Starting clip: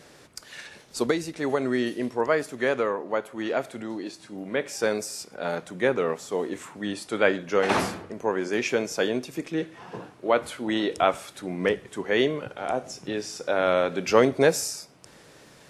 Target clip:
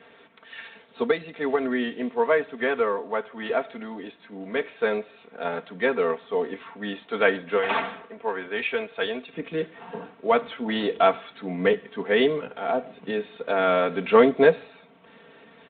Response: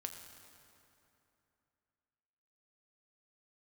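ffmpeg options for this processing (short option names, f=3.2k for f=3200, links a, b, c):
-af "asetnsamples=n=441:p=0,asendcmd='7.57 highpass f 870;9.33 highpass f 140',highpass=f=340:p=1,aecho=1:1:4.4:0.82" -ar 8000 -c:a libspeex -b:a 24k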